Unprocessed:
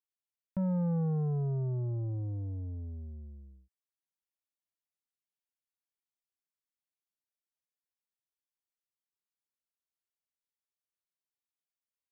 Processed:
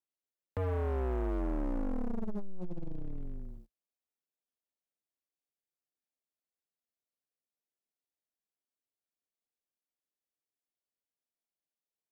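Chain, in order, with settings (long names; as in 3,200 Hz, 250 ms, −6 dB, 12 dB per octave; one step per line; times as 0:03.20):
flat-topped bell 500 Hz +10 dB
frequency shifter −96 Hz
brickwall limiter −27.5 dBFS, peak gain reduction 6 dB
leveller curve on the samples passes 3
level −1.5 dB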